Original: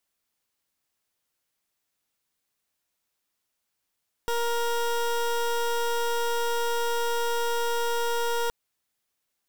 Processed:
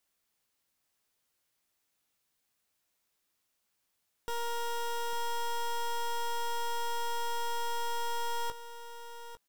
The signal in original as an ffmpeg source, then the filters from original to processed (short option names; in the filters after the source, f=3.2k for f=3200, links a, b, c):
-f lavfi -i "aevalsrc='0.0501*(2*lt(mod(470*t,1),0.21)-1)':d=4.22:s=44100"
-filter_complex "[0:a]asoftclip=type=hard:threshold=-34dB,asplit=2[a][b];[b]adelay=18,volume=-10.5dB[c];[a][c]amix=inputs=2:normalize=0,aecho=1:1:852:0.266"